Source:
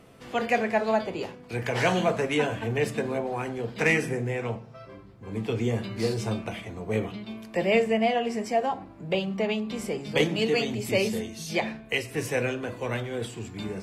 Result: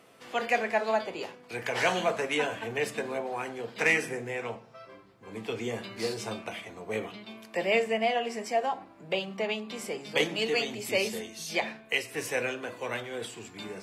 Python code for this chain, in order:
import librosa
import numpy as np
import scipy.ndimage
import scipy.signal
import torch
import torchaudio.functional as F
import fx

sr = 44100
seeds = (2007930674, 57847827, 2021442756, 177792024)

y = fx.highpass(x, sr, hz=590.0, slope=6)